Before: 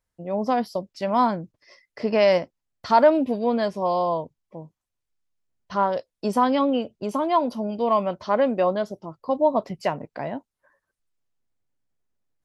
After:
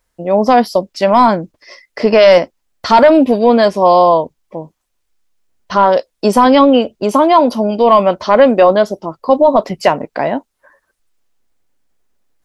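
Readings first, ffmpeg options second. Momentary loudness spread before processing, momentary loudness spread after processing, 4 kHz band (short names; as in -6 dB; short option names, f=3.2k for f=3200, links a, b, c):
14 LU, 11 LU, +14.0 dB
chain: -af "equalizer=f=120:t=o:w=1.2:g=-10,apsyclip=16.5dB,volume=-1.5dB"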